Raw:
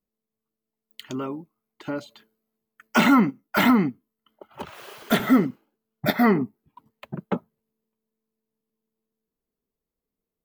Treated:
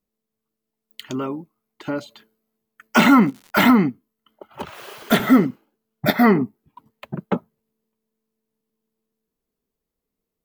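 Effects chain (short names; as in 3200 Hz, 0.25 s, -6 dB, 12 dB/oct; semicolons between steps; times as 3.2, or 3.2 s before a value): 3.05–3.67 crackle 200/s -38 dBFS; gain +4 dB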